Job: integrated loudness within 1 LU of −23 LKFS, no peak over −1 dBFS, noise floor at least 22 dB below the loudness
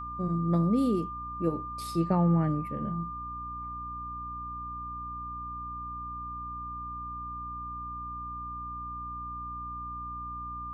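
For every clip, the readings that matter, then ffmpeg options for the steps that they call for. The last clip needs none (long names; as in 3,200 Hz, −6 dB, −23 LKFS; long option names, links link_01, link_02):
mains hum 60 Hz; hum harmonics up to 300 Hz; level of the hum −43 dBFS; interfering tone 1,200 Hz; level of the tone −36 dBFS; integrated loudness −33.0 LKFS; sample peak −14.0 dBFS; target loudness −23.0 LKFS
→ -af "bandreject=frequency=60:width_type=h:width=4,bandreject=frequency=120:width_type=h:width=4,bandreject=frequency=180:width_type=h:width=4,bandreject=frequency=240:width_type=h:width=4,bandreject=frequency=300:width_type=h:width=4"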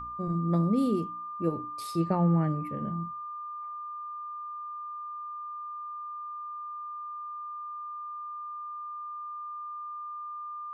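mains hum none found; interfering tone 1,200 Hz; level of the tone −36 dBFS
→ -af "bandreject=frequency=1200:width=30"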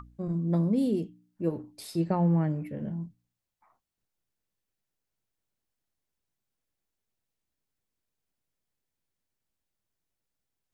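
interfering tone none found; integrated loudness −29.5 LKFS; sample peak −14.0 dBFS; target loudness −23.0 LKFS
→ -af "volume=6.5dB"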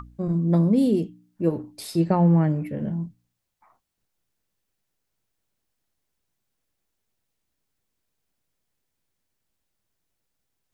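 integrated loudness −23.0 LKFS; sample peak −7.5 dBFS; background noise floor −79 dBFS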